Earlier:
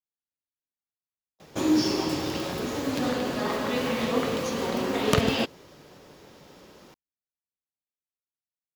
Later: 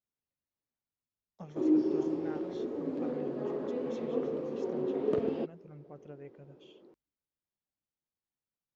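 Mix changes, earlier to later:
speech +10.5 dB
background: add resonant band-pass 370 Hz, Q 3.1

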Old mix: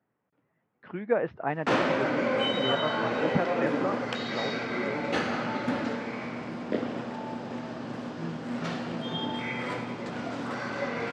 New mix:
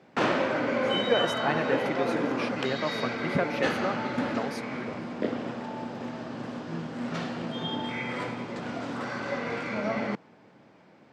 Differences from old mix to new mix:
speech: remove Gaussian smoothing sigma 3.5 samples
background: entry −1.50 s

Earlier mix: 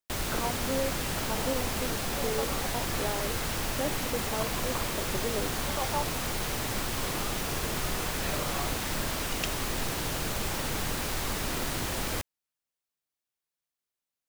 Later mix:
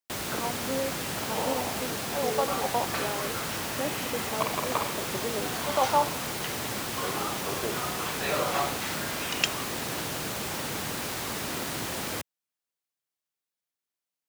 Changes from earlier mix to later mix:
second sound +9.0 dB
master: add high-pass filter 120 Hz 12 dB per octave

